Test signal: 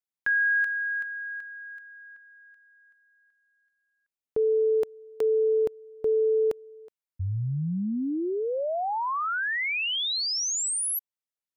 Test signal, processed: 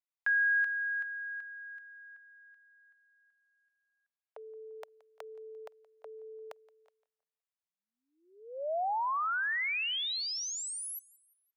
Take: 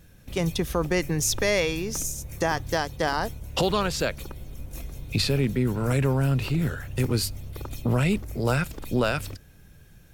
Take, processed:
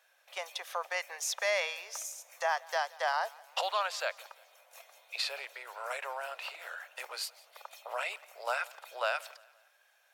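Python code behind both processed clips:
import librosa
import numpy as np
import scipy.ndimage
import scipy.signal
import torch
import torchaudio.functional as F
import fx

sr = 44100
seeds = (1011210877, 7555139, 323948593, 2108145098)

y = scipy.signal.sosfilt(scipy.signal.butter(8, 600.0, 'highpass', fs=sr, output='sos'), x)
y = fx.high_shelf(y, sr, hz=5400.0, db=-10.5)
y = fx.echo_feedback(y, sr, ms=173, feedback_pct=45, wet_db=-23.0)
y = y * 10.0 ** (-3.0 / 20.0)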